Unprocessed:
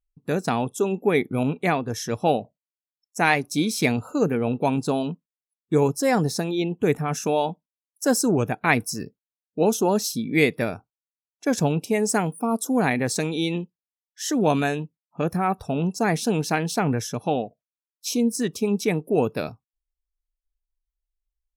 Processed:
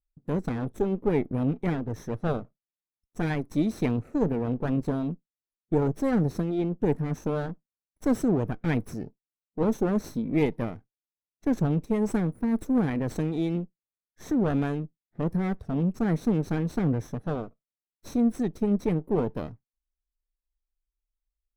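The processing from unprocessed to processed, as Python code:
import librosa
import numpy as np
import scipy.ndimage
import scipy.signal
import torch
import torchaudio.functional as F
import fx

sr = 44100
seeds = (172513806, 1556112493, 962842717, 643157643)

y = fx.lower_of_two(x, sr, delay_ms=0.5)
y = fx.curve_eq(y, sr, hz=(330.0, 3000.0, 10000.0), db=(0, -15, -18))
y = y * librosa.db_to_amplitude(-1.0)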